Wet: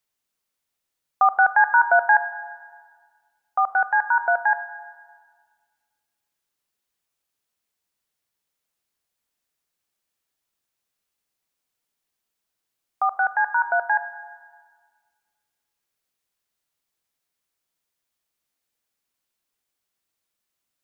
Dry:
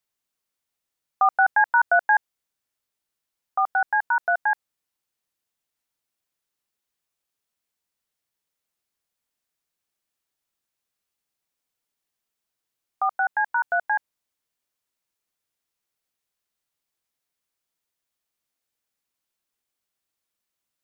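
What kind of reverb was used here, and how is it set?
Schroeder reverb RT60 1.7 s, combs from 33 ms, DRR 13 dB; trim +2 dB

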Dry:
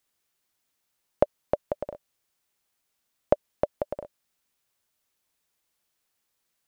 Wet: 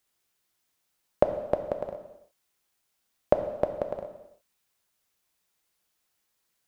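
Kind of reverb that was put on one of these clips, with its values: gated-style reverb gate 370 ms falling, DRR 5.5 dB

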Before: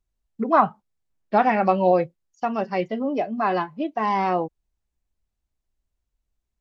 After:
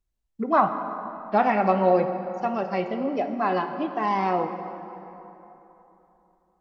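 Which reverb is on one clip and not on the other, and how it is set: plate-style reverb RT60 3.4 s, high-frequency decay 0.55×, pre-delay 0 ms, DRR 6.5 dB; trim -2.5 dB

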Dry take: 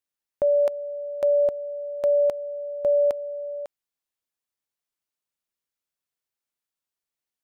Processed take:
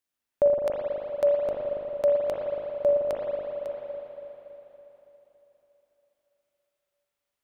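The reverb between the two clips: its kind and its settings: spring tank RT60 3.7 s, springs 40/56 ms, chirp 80 ms, DRR -3.5 dB; trim +1.5 dB

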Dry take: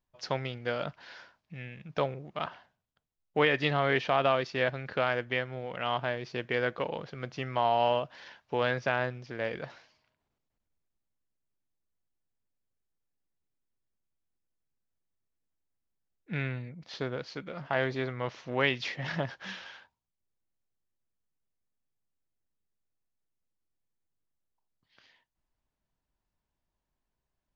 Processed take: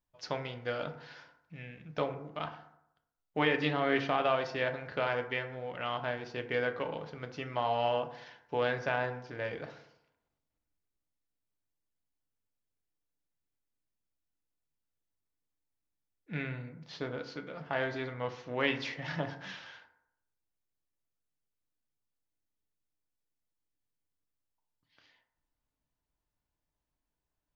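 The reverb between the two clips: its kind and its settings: FDN reverb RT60 0.78 s, low-frequency decay 0.95×, high-frequency decay 0.4×, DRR 5.5 dB; trim -4 dB

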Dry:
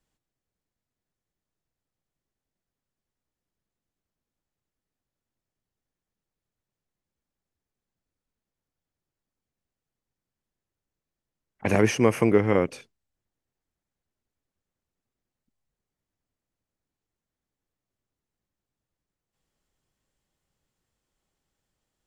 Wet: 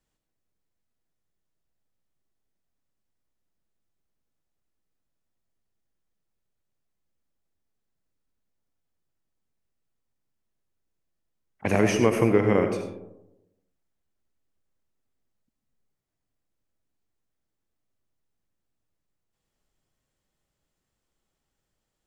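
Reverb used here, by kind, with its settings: algorithmic reverb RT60 0.94 s, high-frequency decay 0.3×, pre-delay 40 ms, DRR 6 dB; trim -1 dB

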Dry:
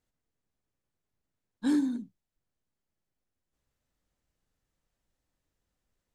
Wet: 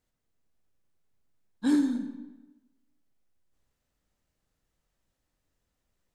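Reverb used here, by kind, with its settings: algorithmic reverb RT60 1.1 s, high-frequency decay 0.8×, pre-delay 5 ms, DRR 7 dB; trim +2 dB

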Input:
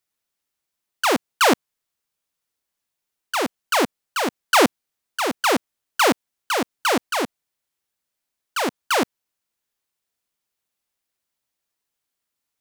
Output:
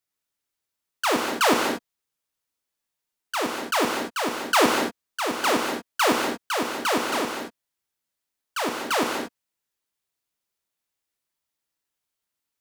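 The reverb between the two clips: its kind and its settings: gated-style reverb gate 260 ms flat, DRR 1.5 dB; trim -4.5 dB

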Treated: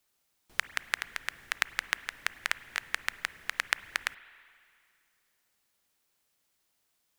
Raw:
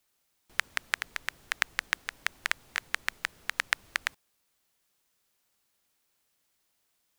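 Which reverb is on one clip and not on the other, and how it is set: spring tank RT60 2.3 s, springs 31/47/52 ms, chirp 70 ms, DRR 16.5 dB; trim -1 dB

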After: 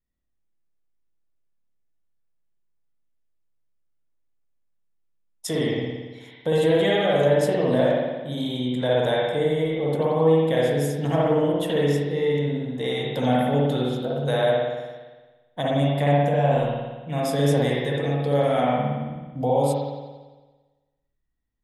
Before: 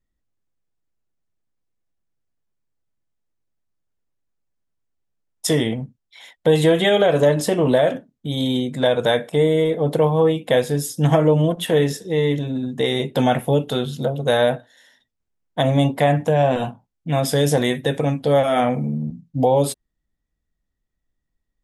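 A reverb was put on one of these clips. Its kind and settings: spring tank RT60 1.3 s, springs 56 ms, chirp 35 ms, DRR -4 dB; trim -9 dB

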